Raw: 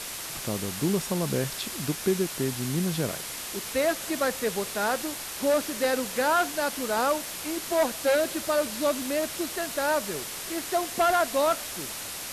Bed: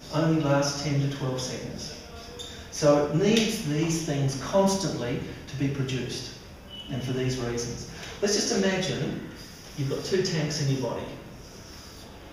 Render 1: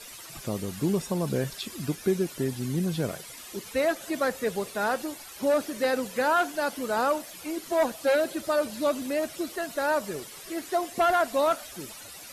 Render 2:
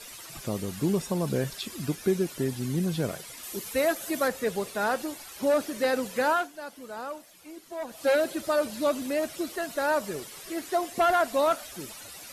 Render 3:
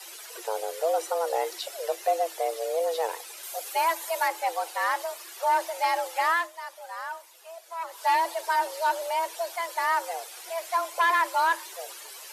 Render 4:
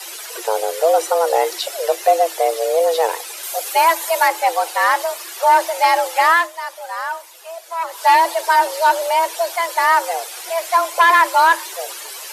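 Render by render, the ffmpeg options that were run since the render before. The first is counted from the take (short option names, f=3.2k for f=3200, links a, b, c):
-af "afftdn=nr=13:nf=-37"
-filter_complex "[0:a]asettb=1/sr,asplit=3[a][b][c];[a]atrim=end=3.434[d];[b]atrim=start=3.43:end=4.28,asetpts=PTS-STARTPTS,afade=t=in:d=0.004:c=qsin,afade=t=out:st=0.846:d=0.004:c=qsin,highshelf=f=9.8k:g=11.5[e];[c]atrim=start=4.276[f];[d][e]acrossfade=d=0.004:c1=hsin:c2=qsin[g];[g][f]acrossfade=d=0.004:c1=qsin:c2=hsin,asplit=3[h][i][j];[h]atrim=end=6.49,asetpts=PTS-STARTPTS,afade=t=out:st=6.3:d=0.19:silence=0.266073[k];[i]atrim=start=6.49:end=7.87,asetpts=PTS-STARTPTS,volume=-11.5dB[l];[j]atrim=start=7.87,asetpts=PTS-STARTPTS,afade=t=in:d=0.19:silence=0.266073[m];[k][l][m]concat=n=3:v=0:a=1"
-af "aeval=exprs='0.188*(cos(1*acos(clip(val(0)/0.188,-1,1)))-cos(1*PI/2))+0.00473*(cos(4*acos(clip(val(0)/0.188,-1,1)))-cos(4*PI/2))+0.00335*(cos(5*acos(clip(val(0)/0.188,-1,1)))-cos(5*PI/2))':c=same,afreqshift=330"
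-af "volume=11dB,alimiter=limit=-3dB:level=0:latency=1"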